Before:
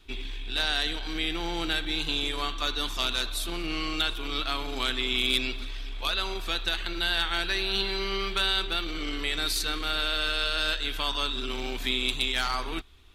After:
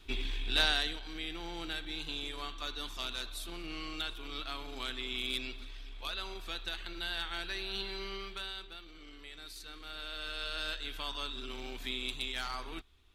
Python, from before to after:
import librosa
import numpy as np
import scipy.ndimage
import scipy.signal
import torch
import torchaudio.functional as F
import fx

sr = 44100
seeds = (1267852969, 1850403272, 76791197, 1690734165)

y = fx.gain(x, sr, db=fx.line((0.63, 0.0), (1.03, -10.5), (8.06, -10.5), (8.81, -20.0), (9.53, -20.0), (10.54, -10.0)))